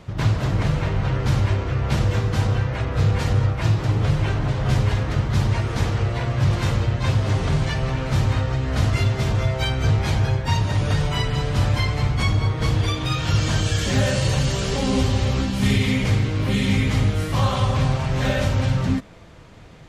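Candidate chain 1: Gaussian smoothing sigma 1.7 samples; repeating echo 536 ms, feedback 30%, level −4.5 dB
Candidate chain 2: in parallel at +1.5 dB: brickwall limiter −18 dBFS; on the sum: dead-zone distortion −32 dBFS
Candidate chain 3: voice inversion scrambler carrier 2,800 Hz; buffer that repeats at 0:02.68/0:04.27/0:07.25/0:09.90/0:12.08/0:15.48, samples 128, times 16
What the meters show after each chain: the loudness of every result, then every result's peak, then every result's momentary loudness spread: −20.5, −18.0, −16.5 LKFS; −5.5, −5.0, −5.5 dBFS; 3, 2, 3 LU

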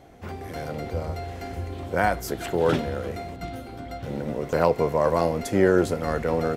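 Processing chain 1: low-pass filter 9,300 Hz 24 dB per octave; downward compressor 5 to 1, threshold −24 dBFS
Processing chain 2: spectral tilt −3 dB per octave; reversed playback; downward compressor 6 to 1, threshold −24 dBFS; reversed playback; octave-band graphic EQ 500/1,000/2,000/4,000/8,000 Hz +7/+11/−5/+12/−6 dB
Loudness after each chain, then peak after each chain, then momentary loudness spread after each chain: −31.0, −24.5 LKFS; −13.5, −7.0 dBFS; 8, 7 LU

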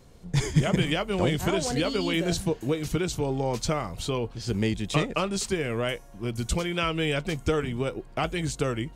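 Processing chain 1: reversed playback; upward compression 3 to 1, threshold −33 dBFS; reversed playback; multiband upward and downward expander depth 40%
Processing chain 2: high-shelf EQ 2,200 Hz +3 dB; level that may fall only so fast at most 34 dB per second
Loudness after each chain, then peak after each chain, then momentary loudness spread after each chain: −27.5, −25.5 LKFS; −8.5, −7.5 dBFS; 7, 6 LU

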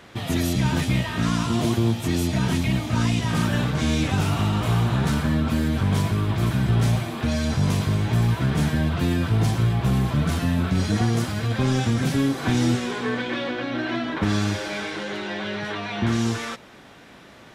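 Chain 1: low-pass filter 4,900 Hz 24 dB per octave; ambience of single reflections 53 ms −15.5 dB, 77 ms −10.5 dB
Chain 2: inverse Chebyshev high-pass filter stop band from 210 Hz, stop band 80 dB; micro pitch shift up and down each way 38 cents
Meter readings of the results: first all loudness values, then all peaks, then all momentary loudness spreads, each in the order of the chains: −22.5, −36.0 LKFS; −10.0, −23.0 dBFS; 7, 5 LU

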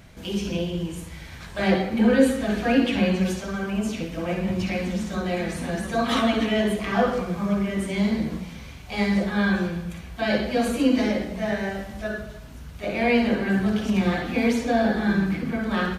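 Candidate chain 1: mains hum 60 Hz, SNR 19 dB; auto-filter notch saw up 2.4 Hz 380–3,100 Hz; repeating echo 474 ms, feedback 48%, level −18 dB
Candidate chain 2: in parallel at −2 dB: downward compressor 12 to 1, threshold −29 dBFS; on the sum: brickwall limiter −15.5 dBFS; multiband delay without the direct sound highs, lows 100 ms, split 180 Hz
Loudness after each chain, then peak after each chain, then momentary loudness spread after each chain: −25.0, −26.0 LKFS; −7.5, −12.5 dBFS; 11, 5 LU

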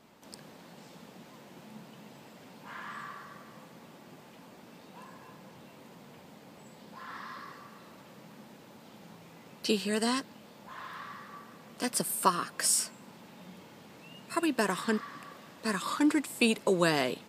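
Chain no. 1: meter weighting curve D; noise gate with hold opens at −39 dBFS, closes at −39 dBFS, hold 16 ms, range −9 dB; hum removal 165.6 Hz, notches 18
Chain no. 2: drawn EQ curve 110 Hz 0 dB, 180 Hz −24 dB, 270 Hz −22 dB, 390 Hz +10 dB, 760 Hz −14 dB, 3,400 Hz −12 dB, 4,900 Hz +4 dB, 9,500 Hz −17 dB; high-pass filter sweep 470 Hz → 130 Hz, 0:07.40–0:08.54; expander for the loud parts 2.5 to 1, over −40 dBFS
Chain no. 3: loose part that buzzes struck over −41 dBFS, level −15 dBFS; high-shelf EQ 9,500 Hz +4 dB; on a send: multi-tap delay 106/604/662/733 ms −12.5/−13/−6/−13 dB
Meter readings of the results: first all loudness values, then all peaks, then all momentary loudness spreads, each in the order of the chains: −26.0, −30.0, −27.5 LKFS; −5.5, −10.5, −9.0 dBFS; 23, 23, 22 LU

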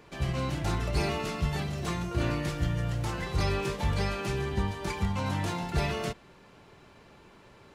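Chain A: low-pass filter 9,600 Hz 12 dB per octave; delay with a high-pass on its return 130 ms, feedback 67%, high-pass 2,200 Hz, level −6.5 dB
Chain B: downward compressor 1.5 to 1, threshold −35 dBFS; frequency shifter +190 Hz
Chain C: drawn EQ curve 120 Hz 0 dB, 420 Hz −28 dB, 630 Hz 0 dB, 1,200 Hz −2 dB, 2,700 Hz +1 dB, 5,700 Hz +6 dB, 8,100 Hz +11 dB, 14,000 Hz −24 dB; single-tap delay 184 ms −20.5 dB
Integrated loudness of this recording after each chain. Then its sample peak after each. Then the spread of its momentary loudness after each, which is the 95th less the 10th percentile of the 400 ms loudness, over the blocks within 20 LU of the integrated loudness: −31.0, −33.5, −32.0 LKFS; −17.5, −19.0, −15.5 dBFS; 4, 2, 4 LU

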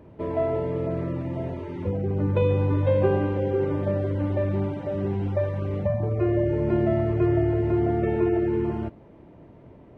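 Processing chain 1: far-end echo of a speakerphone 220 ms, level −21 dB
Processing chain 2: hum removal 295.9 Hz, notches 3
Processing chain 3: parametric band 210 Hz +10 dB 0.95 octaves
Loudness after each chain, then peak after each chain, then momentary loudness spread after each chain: −25.0, −25.0, −22.0 LKFS; −10.0, −10.0, −7.5 dBFS; 8, 8, 6 LU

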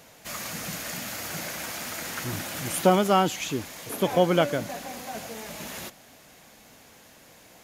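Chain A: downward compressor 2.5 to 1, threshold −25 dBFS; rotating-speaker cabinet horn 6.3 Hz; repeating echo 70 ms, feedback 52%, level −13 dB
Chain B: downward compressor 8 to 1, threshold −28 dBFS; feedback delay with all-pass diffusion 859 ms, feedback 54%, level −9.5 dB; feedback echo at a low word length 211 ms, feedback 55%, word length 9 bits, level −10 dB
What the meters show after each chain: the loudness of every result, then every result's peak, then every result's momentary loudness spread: −33.5, −33.0 LKFS; −14.0, −16.5 dBFS; 24, 13 LU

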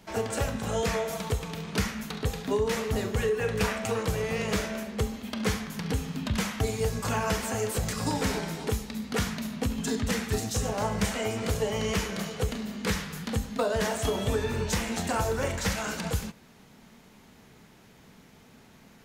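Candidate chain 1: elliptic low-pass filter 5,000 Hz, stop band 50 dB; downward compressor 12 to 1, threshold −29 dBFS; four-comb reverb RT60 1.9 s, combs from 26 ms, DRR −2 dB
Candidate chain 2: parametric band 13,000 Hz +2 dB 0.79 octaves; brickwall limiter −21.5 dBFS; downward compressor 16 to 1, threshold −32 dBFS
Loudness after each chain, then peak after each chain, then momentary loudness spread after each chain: −31.0, −36.5 LKFS; −16.5, −22.5 dBFS; 3, 18 LU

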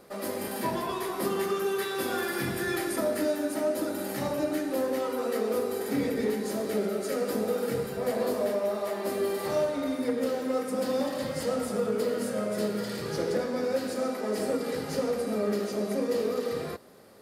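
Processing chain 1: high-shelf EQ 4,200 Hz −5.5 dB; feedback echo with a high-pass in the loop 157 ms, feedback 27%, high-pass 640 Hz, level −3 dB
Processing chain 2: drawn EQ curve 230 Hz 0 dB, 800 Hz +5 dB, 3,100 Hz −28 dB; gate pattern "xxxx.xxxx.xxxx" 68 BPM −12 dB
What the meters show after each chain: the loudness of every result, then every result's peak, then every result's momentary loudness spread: −29.5, −28.5 LKFS; −16.0, −15.0 dBFS; 3, 6 LU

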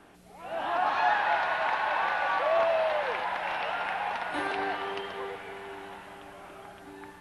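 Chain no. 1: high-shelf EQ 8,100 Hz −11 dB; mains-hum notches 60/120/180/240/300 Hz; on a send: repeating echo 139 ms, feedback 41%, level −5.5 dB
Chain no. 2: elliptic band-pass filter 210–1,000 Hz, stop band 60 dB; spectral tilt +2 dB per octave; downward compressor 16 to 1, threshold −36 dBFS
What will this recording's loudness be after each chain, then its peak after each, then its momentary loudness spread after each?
−28.0, −41.5 LKFS; −14.0, −28.0 dBFS; 21, 11 LU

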